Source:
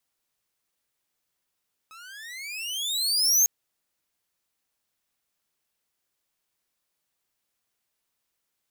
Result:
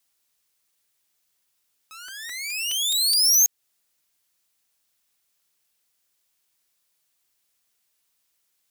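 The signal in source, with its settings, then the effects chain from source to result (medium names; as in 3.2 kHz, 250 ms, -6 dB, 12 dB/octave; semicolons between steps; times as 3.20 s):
gliding synth tone saw, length 1.55 s, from 1.27 kHz, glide +28.5 st, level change +30 dB, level -12 dB
treble shelf 2.2 kHz +8.5 dB; compression 1.5:1, threshold -22 dBFS; crackling interface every 0.21 s, samples 128, repeat, from 0.40 s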